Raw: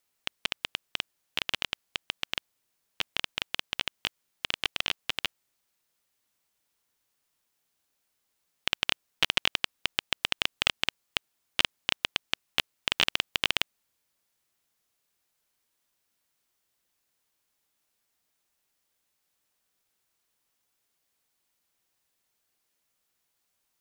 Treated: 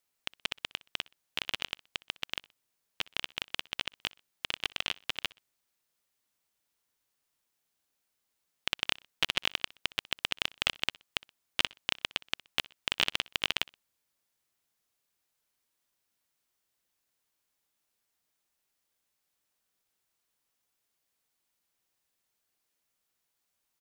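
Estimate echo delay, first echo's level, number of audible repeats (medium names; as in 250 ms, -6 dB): 62 ms, -23.5 dB, 2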